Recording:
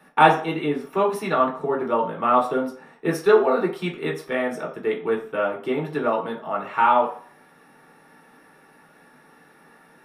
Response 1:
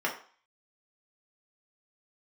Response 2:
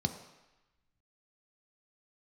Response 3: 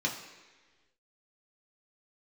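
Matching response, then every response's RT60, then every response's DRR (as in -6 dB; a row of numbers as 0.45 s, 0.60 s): 1; 0.45 s, 1.0 s, 1.4 s; -2.0 dB, 6.0 dB, -2.0 dB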